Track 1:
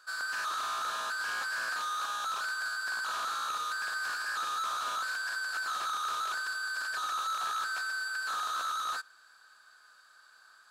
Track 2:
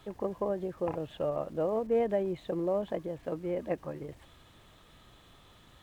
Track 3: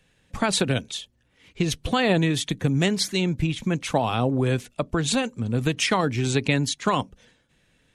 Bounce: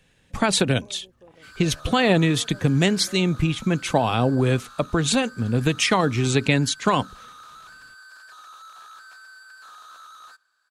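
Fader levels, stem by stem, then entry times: −11.5, −18.5, +2.5 decibels; 1.35, 0.40, 0.00 seconds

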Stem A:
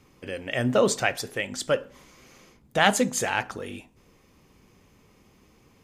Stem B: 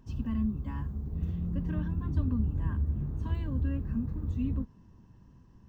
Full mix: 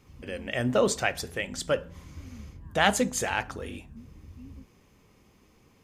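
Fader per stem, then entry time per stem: −2.5, −15.0 decibels; 0.00, 0.00 seconds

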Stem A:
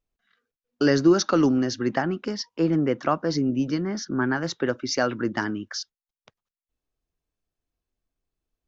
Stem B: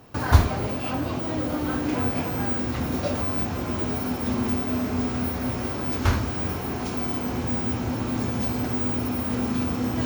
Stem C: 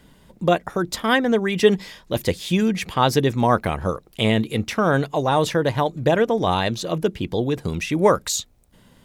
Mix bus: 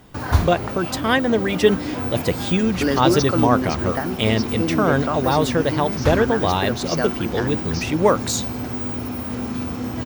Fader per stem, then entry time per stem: −1.5, −1.0, 0.0 decibels; 2.00, 0.00, 0.00 seconds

